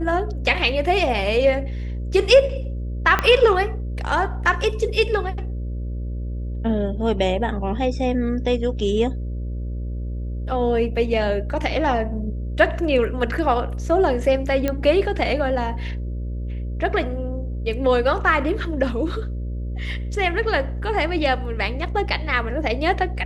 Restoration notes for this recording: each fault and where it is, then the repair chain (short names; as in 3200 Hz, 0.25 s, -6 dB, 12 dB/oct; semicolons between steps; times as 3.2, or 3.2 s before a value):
buzz 60 Hz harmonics 10 -27 dBFS
3.19 pop -6 dBFS
14.68 pop -9 dBFS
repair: de-click; de-hum 60 Hz, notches 10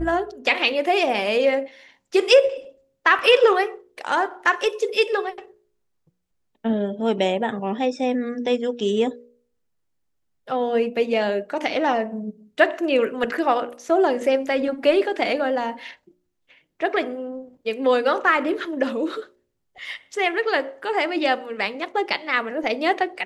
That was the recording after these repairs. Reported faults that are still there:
3.19 pop